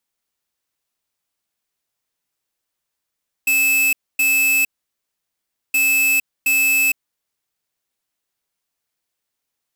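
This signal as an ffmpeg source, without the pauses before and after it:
ffmpeg -f lavfi -i "aevalsrc='0.158*(2*lt(mod(2610*t,1),0.5)-1)*clip(min(mod(mod(t,2.27),0.72),0.46-mod(mod(t,2.27),0.72))/0.005,0,1)*lt(mod(t,2.27),1.44)':duration=4.54:sample_rate=44100" out.wav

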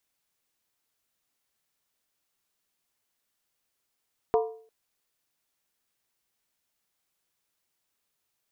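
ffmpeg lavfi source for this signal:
ffmpeg -f lavfi -i "aevalsrc='0.126*pow(10,-3*t/0.49)*sin(2*PI*445*t)+0.0708*pow(10,-3*t/0.388)*sin(2*PI*709.3*t)+0.0398*pow(10,-3*t/0.335)*sin(2*PI*950.5*t)+0.0224*pow(10,-3*t/0.323)*sin(2*PI*1021.7*t)+0.0126*pow(10,-3*t/0.301)*sin(2*PI*1180.6*t)':duration=0.35:sample_rate=44100" out.wav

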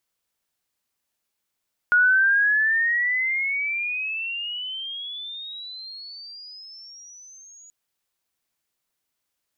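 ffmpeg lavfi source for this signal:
ffmpeg -f lavfi -i "aevalsrc='pow(10,(-13.5-31.5*t/5.78)/20)*sin(2*PI*1440*5.78/(27*log(2)/12)*(exp(27*log(2)/12*t/5.78)-1))':duration=5.78:sample_rate=44100" out.wav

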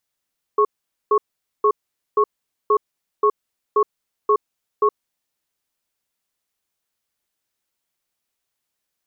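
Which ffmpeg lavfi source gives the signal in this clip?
ffmpeg -f lavfi -i "aevalsrc='0.178*(sin(2*PI*420*t)+sin(2*PI*1100*t))*clip(min(mod(t,0.53),0.07-mod(t,0.53))/0.005,0,1)':duration=4.53:sample_rate=44100" out.wav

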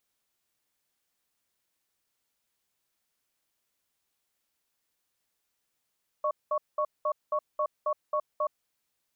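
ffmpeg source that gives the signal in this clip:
ffmpeg -f lavfi -i "aevalsrc='0.0422*(sin(2*PI*605*t)+sin(2*PI*1110*t))*clip(min(mod(t,0.27),0.07-mod(t,0.27))/0.005,0,1)':duration=2.34:sample_rate=44100" out.wav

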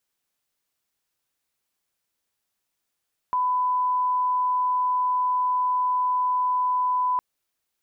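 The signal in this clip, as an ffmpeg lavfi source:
ffmpeg -f lavfi -i "sine=frequency=1000:duration=3.86:sample_rate=44100,volume=-1.94dB" out.wav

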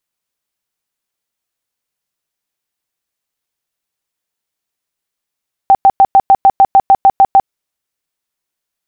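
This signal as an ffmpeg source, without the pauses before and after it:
ffmpeg -f lavfi -i "aevalsrc='0.75*sin(2*PI*782*mod(t,0.15))*lt(mod(t,0.15),38/782)':duration=1.8:sample_rate=44100" out.wav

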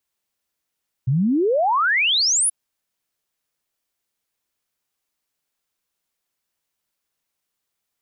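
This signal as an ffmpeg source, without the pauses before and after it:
ffmpeg -f lavfi -i "aevalsrc='0.168*clip(min(t,1.43-t)/0.01,0,1)*sin(2*PI*120*1.43/log(11000/120)*(exp(log(11000/120)*t/1.43)-1))':duration=1.43:sample_rate=44100" out.wav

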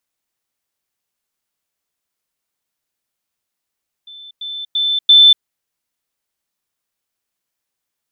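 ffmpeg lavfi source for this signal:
ffmpeg -f lavfi -i "aevalsrc='pow(10,(-34+10*floor(t/0.34))/20)*sin(2*PI*3530*t)*clip(min(mod(t,0.34),0.24-mod(t,0.34))/0.005,0,1)':duration=1.36:sample_rate=44100" out.wav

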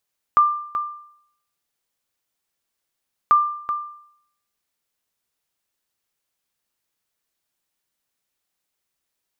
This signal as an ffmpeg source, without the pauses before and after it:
ffmpeg -f lavfi -i "aevalsrc='0.398*(sin(2*PI*1190*mod(t,2.94))*exp(-6.91*mod(t,2.94)/0.68)+0.316*sin(2*PI*1190*max(mod(t,2.94)-0.38,0))*exp(-6.91*max(mod(t,2.94)-0.38,0)/0.68))':duration=5.88:sample_rate=44100" out.wav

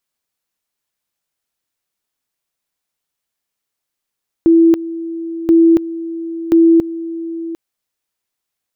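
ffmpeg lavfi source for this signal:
ffmpeg -f lavfi -i "aevalsrc='pow(10,(-5.5-15.5*gte(mod(t,1.03),0.28))/20)*sin(2*PI*331*t)':duration=3.09:sample_rate=44100" out.wav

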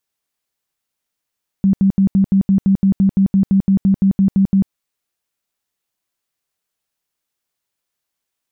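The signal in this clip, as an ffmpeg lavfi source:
ffmpeg -f lavfi -i "aevalsrc='0.355*sin(2*PI*194*mod(t,0.17))*lt(mod(t,0.17),18/194)':duration=3.06:sample_rate=44100" out.wav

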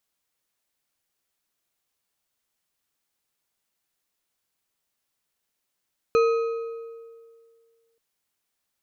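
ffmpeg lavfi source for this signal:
ffmpeg -f lavfi -i "aevalsrc='0.178*pow(10,-3*t/2.01)*sin(2*PI*459*t)+0.0708*pow(10,-3*t/1.483)*sin(2*PI*1265.5*t)+0.0282*pow(10,-3*t/1.212)*sin(2*PI*2480.4*t)+0.0112*pow(10,-3*t/1.042)*sin(2*PI*4100.2*t)+0.00447*pow(10,-3*t/0.924)*sin(2*PI*6123.1*t)':duration=1.83:sample_rate=44100" out.wav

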